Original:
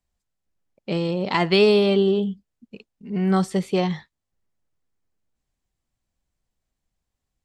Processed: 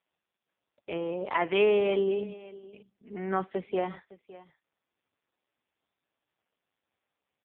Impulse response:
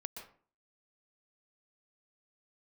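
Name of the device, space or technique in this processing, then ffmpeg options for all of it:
satellite phone: -filter_complex "[0:a]asettb=1/sr,asplit=3[a][b][c];[a]atrim=end=1.534[d];[b]atrim=start=1.53:end=3.5,asetpts=PTS-STARTPTS,afade=t=in:d=0.004:c=qsin,afade=t=out:st=1.966:d=0.004:c=qsin,adynamicequalizer=threshold=0.01:dfrequency=2100:dqfactor=1.7:tfrequency=2100:tqfactor=1.7:attack=5:release=100:ratio=0.375:range=2:mode=boostabove:tftype=bell[e];[c]atrim=start=3.496[f];[d][e]acrossfade=d=0.004:c1=hsin:c2=qsin[g];[g][f]acrossfade=d=0.004:c1=qsin:c2=hsin,highpass=380,lowpass=3k,aecho=1:1:560:0.112,volume=-3.5dB" -ar 8000 -c:a libopencore_amrnb -b:a 5150

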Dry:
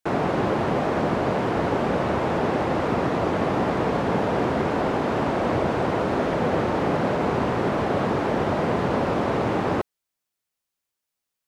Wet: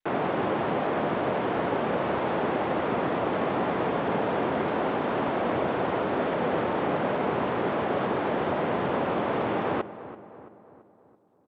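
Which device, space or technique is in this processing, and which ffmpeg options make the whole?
Bluetooth headset: -filter_complex "[0:a]highpass=f=230:p=1,asplit=2[a][b];[b]adelay=335,lowpass=f=1.9k:p=1,volume=-14dB,asplit=2[c][d];[d]adelay=335,lowpass=f=1.9k:p=1,volume=0.54,asplit=2[e][f];[f]adelay=335,lowpass=f=1.9k:p=1,volume=0.54,asplit=2[g][h];[h]adelay=335,lowpass=f=1.9k:p=1,volume=0.54,asplit=2[i][j];[j]adelay=335,lowpass=f=1.9k:p=1,volume=0.54[k];[a][c][e][g][i][k]amix=inputs=6:normalize=0,aresample=8000,aresample=44100,volume=-2.5dB" -ar 32000 -c:a sbc -b:a 64k

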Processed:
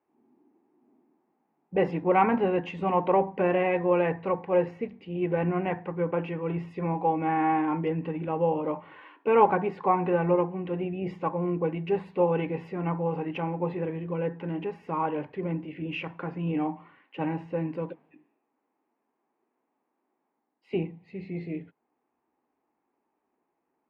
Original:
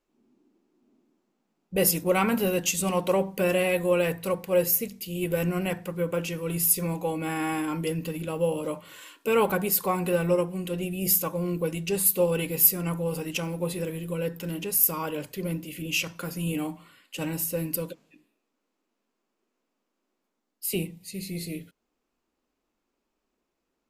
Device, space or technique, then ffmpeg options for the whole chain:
bass cabinet: -af "highpass=f=90:w=0.5412,highpass=f=90:w=1.3066,equalizer=f=120:t=q:w=4:g=-8,equalizer=f=200:t=q:w=4:g=-7,equalizer=f=550:t=q:w=4:g=-5,equalizer=f=830:t=q:w=4:g=8,equalizer=f=1.4k:t=q:w=4:g=-6,lowpass=f=2k:w=0.5412,lowpass=f=2k:w=1.3066,volume=3dB"

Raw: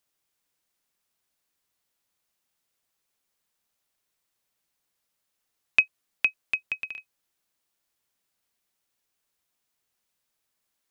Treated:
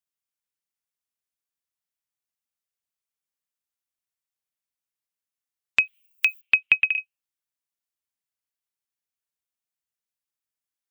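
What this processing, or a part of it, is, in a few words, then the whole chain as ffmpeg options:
mastering chain: -filter_complex "[0:a]asplit=3[a][b][c];[a]afade=t=out:st=5.83:d=0.02[d];[b]aemphasis=mode=production:type=riaa,afade=t=in:st=5.83:d=0.02,afade=t=out:st=6.4:d=0.02[e];[c]afade=t=in:st=6.4:d=0.02[f];[d][e][f]amix=inputs=3:normalize=0,afftdn=nr=27:nf=-49,highpass=f=46:w=0.5412,highpass=f=46:w=1.3066,equalizer=f=4.1k:t=o:w=0.77:g=-2.5,acompressor=threshold=-24dB:ratio=3,asoftclip=type=tanh:threshold=-7.5dB,tiltshelf=f=810:g=-5.5,alimiter=level_in=12.5dB:limit=-1dB:release=50:level=0:latency=1,lowshelf=f=240:g=10.5,volume=-2.5dB"

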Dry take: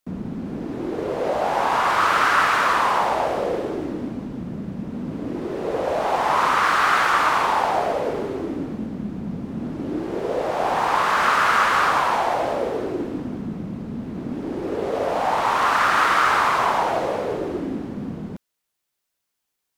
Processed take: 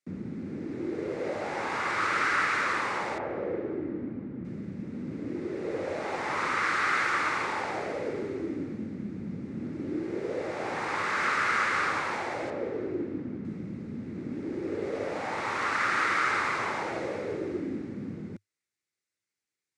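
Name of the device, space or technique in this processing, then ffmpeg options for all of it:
car door speaker: -filter_complex "[0:a]highpass=85,equalizer=f=100:t=q:w=4:g=6,equalizer=f=340:t=q:w=4:g=4,equalizer=f=700:t=q:w=4:g=-9,equalizer=f=1k:t=q:w=4:g=-8,equalizer=f=2.1k:t=q:w=4:g=7,equalizer=f=3.1k:t=q:w=4:g=-6,lowpass=f=9k:w=0.5412,lowpass=f=9k:w=1.3066,asettb=1/sr,asplit=3[a][b][c];[a]atrim=end=3.184[d];[b]atrim=start=3.18:end=4.45,asetpts=PTS-STARTPTS,afade=t=in:d=0.004:c=qsin,afade=t=out:st=1.266:d=0.004:c=qsin,lowpass=1.8k[e];[c]atrim=start=4.446[f];[d][e]acrossfade=d=0.004:c1=hsin:c2=qsin[g];[g][f]acrossfade=d=0.004:c1=qsin:c2=hsin,asettb=1/sr,asplit=3[h][i][j];[h]atrim=end=12.504[k];[i]atrim=start=12.5:end=13.45,asetpts=PTS-STARTPTS,afade=t=in:d=0.004:c=qsin,afade=t=out:st=0.946:d=0.004:c=qsin,aemphasis=mode=reproduction:type=75kf[l];[j]atrim=start=13.446[m];[k][l]acrossfade=d=0.004:c1=hsin:c2=qsin[n];[n][m]acrossfade=d=0.004:c1=qsin:c2=hsin,volume=-7.5dB"

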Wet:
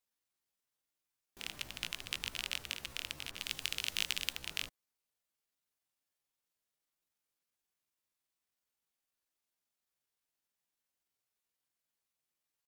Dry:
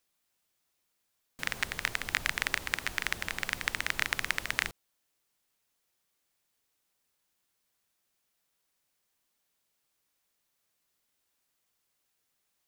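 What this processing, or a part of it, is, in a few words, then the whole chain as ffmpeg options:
chipmunk voice: -filter_complex "[0:a]asetrate=66075,aresample=44100,atempo=0.66742,asettb=1/sr,asplit=3[a][b][c];[a]atrim=end=3.314[d];[b]atrim=start=3.31:end=4.33,asetpts=PTS-STARTPTS,afade=t=in:d=0.004:c=qsin,afade=t=out:st=1.016:d=0.004:c=qsin,adynamicequalizer=threshold=0.00891:dfrequency=2200:dqfactor=0.7:tfrequency=2200:tqfactor=0.7:attack=5:release=100:ratio=0.375:range=2.5:mode=boostabove:tftype=highshelf[e];[c]atrim=start=4.326[f];[d][e]acrossfade=d=0.004:c1=hsin:c2=qsin[g];[g][f]acrossfade=d=0.004:c1=qsin:c2=hsin,volume=-8.5dB"

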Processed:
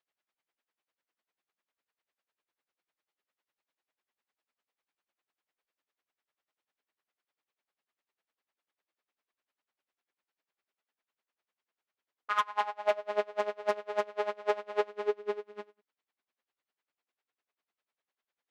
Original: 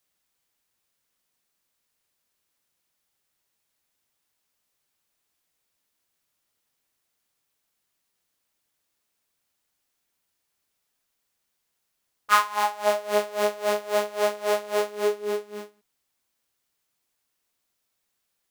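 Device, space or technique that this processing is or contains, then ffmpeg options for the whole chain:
helicopter radio: -af "highpass=310,lowpass=2.7k,aeval=exprs='val(0)*pow(10,-22*(0.5-0.5*cos(2*PI*10*n/s))/20)':c=same,asoftclip=type=hard:threshold=-19dB"

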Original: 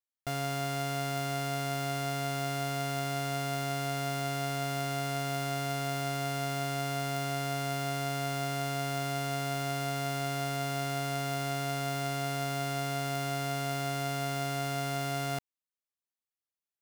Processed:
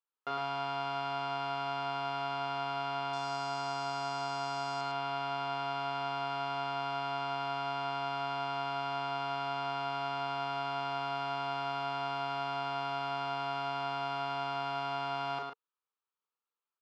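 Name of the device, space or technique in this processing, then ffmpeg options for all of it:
phone earpiece: -filter_complex "[0:a]equalizer=f=620:t=o:w=0.34:g=-4.5,asplit=2[a][b];[b]adelay=37,volume=-5.5dB[c];[a][c]amix=inputs=2:normalize=0,asettb=1/sr,asplit=3[d][e][f];[d]atrim=end=3.134[g];[e]atrim=start=3.13:end=4.81,asetpts=PTS-STARTPTS,afade=t=in:d=0.004:c=qsin,afade=t=out:st=1.676:d=0.004:c=qsin,highshelf=f=4.6k:t=q:w=1.5:g=12[h];[f]atrim=start=4.806[i];[g][h]acrossfade=d=0.004:c1=hsin:c2=qsin[j];[j][i]acrossfade=d=0.004:c1=qsin:c2=hsin,highpass=410,equalizer=f=450:t=q:w=4:g=7,equalizer=f=660:t=q:w=4:g=-5,equalizer=f=950:t=q:w=4:g=8,equalizer=f=1.3k:t=q:w=4:g=8,equalizer=f=2k:t=q:w=4:g=-9,equalizer=f=3.6k:t=q:w=4:g=-3,lowpass=f=3.7k:w=0.5412,lowpass=f=3.7k:w=1.3066,aecho=1:1:107:0.562"

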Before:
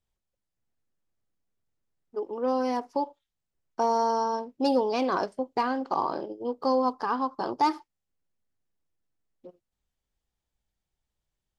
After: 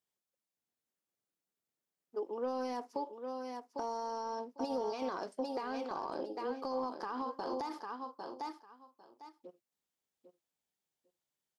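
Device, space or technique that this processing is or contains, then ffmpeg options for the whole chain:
de-esser from a sidechain: -filter_complex "[0:a]highpass=220,highshelf=f=5.7k:g=6,asettb=1/sr,asplit=3[a][b][c];[a]atrim=end=7.194[d];[b]atrim=start=7.19:end=7.69,asetpts=PTS-STARTPTS,afade=t=in:d=0.004:c=qsin,afade=t=out:st=0.496:d=0.004:c=qsin,asplit=2[e][f];[f]adelay=43,volume=-8dB[g];[e][g]amix=inputs=2:normalize=0,atrim=end_sample=22050[h];[c]atrim=start=7.686[i];[d][h]acrossfade=d=0.004:c1=hsin:c2=qsin[j];[j][i]acrossfade=d=0.004:c1=qsin:c2=hsin,aecho=1:1:800|1600:0.335|0.0536,asplit=2[k][l];[l]highpass=f=5.6k:p=1,apad=whole_len=581672[m];[k][m]sidechaincompress=threshold=-45dB:ratio=16:attack=3.1:release=34,volume=-5dB"

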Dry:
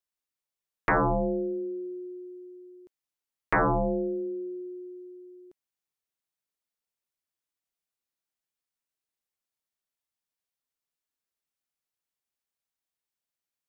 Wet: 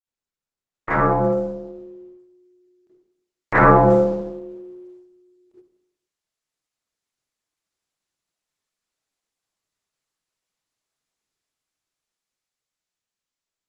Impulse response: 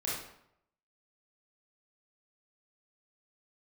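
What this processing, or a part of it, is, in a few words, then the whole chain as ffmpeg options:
speakerphone in a meeting room: -filter_complex "[1:a]atrim=start_sample=2205[a];[0:a][a]afir=irnorm=-1:irlink=0,dynaudnorm=f=590:g=7:m=14dB,agate=range=-10dB:threshold=-43dB:ratio=16:detection=peak" -ar 48000 -c:a libopus -b:a 12k

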